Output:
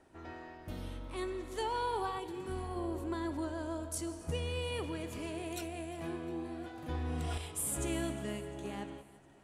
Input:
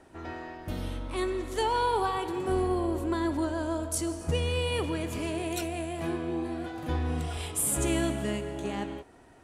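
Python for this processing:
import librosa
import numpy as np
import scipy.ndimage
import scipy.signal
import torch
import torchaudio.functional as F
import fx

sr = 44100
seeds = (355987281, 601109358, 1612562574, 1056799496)

y = fx.peak_eq(x, sr, hz=fx.line((2.18, 1500.0), (2.75, 290.0)), db=-11.5, octaves=0.94, at=(2.18, 2.75), fade=0.02)
y = fx.echo_feedback(y, sr, ms=354, feedback_pct=56, wet_db=-20.5)
y = fx.env_flatten(y, sr, amount_pct=100, at=(6.94, 7.38))
y = y * 10.0 ** (-8.0 / 20.0)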